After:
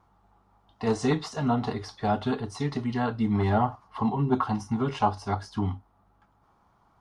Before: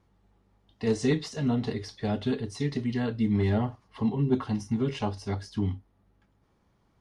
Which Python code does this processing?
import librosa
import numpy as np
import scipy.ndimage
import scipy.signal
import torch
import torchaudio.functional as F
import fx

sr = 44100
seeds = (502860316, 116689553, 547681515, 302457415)

y = fx.band_shelf(x, sr, hz=990.0, db=11.5, octaves=1.3)